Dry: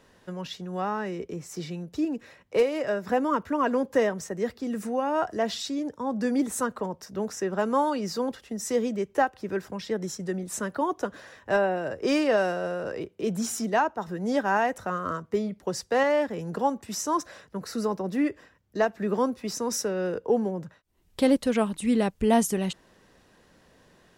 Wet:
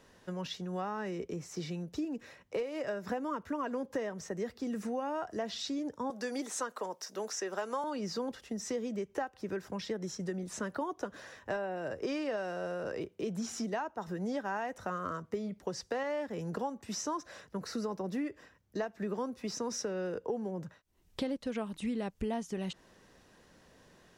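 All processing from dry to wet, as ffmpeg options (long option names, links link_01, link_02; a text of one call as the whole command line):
ffmpeg -i in.wav -filter_complex "[0:a]asettb=1/sr,asplit=3[link_01][link_02][link_03];[link_01]atrim=end=6.104[link_04];[link_02]atrim=start=6.1:end=7.84,asetpts=PTS-STARTPTS,afade=type=in:duration=0.004:curve=qsin,afade=type=out:start_time=1.736:duration=0.004:curve=qsin,highpass=420,highshelf=frequency=4600:gain=11.5[link_05];[link_03]atrim=start=7.836[link_06];[link_04][link_05]acrossfade=duration=0.004:curve1=hsin:curve2=qsin[link_07];[link_07][link_06]acrossfade=duration=0.004:curve1=qsin:curve2=hsin,acrossover=split=5800[link_08][link_09];[link_09]acompressor=threshold=-53dB:ratio=4:attack=1:release=60[link_10];[link_08][link_10]amix=inputs=2:normalize=0,equalizer=frequency=6000:width_type=o:width=0.48:gain=3,acompressor=threshold=-30dB:ratio=6,volume=-2.5dB" out.wav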